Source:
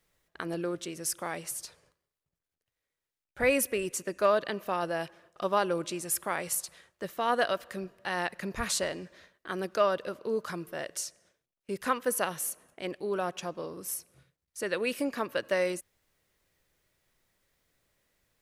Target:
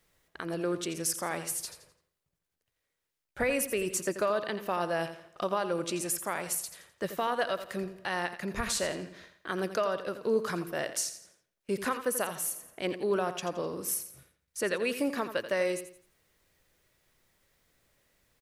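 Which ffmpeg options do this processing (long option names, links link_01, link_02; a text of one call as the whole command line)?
ffmpeg -i in.wav -filter_complex "[0:a]alimiter=limit=-23dB:level=0:latency=1:release=419,asplit=2[link_01][link_02];[link_02]aecho=0:1:85|170|255|340:0.282|0.093|0.0307|0.0101[link_03];[link_01][link_03]amix=inputs=2:normalize=0,volume=3.5dB" out.wav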